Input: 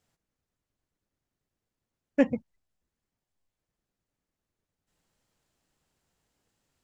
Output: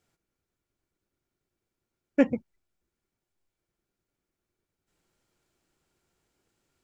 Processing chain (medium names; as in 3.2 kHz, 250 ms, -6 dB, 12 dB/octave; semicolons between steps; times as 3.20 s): small resonant body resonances 360/1400/2300 Hz, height 9 dB